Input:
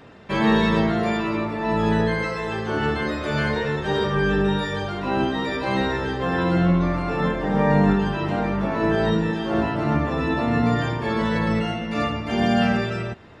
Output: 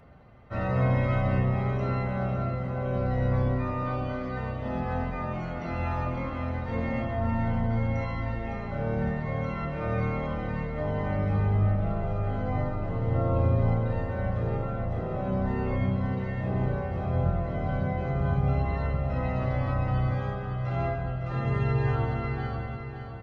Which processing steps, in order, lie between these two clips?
comb 0.9 ms, depth 51%; speed mistake 78 rpm record played at 45 rpm; on a send: feedback echo 0.559 s, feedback 49%, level -8.5 dB; on the sum: gain -7.5 dB

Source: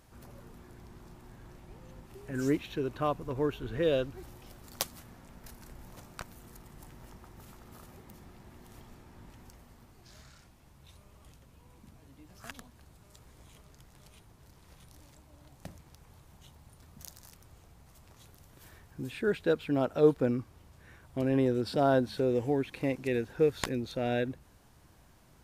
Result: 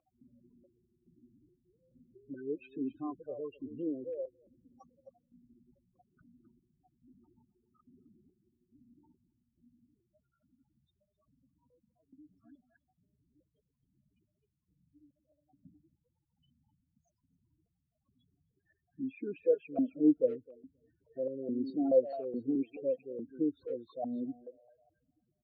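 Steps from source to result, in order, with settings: on a send: thinning echo 0.265 s, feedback 74%, high-pass 430 Hz, level -22.5 dB; on the sum: loudest bins only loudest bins 8; speakerphone echo 0.26 s, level -12 dB; vowel sequencer 4.7 Hz; gain +6 dB

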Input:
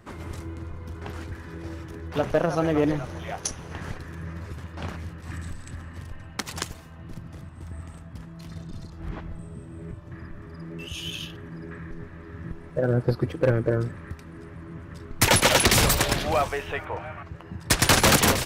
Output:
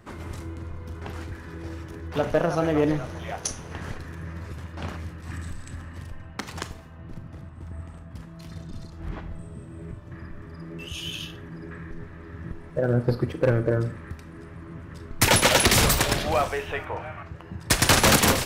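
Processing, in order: 6.11–8.11 high shelf 3400 Hz -9 dB; Schroeder reverb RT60 0.35 s, combs from 26 ms, DRR 11.5 dB

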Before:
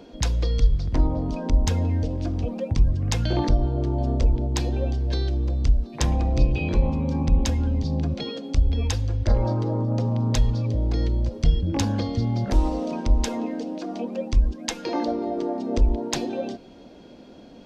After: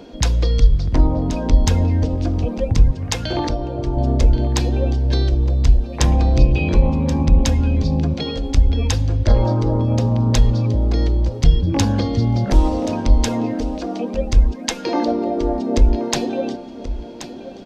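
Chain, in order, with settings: 2.91–3.97 low shelf 220 Hz -12 dB; echo 1.079 s -13 dB; gain +6 dB

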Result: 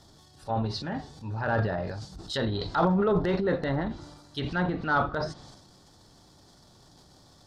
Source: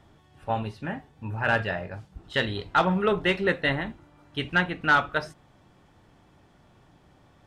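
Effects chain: treble ducked by the level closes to 1400 Hz, closed at -24 dBFS; transient shaper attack -4 dB, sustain +9 dB; resonant high shelf 3400 Hz +10 dB, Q 3

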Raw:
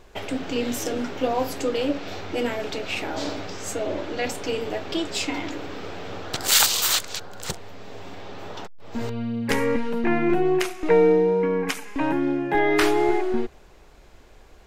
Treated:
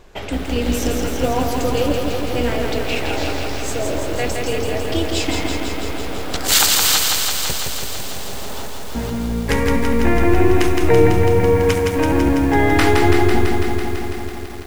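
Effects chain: octaver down 2 oct, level 0 dB; lo-fi delay 0.166 s, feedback 80%, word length 7-bit, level -3.5 dB; gain +3 dB

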